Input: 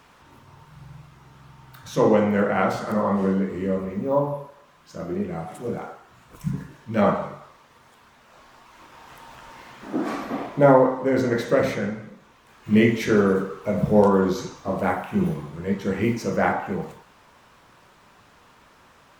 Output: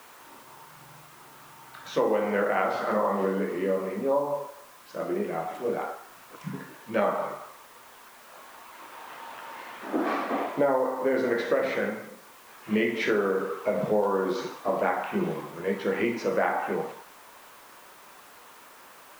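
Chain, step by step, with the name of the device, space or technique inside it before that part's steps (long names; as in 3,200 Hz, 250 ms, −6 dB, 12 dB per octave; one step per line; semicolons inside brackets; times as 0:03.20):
baby monitor (band-pass filter 350–3,500 Hz; downward compressor, threshold −25 dBFS, peak gain reduction 13 dB; white noise bed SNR 26 dB)
level +3.5 dB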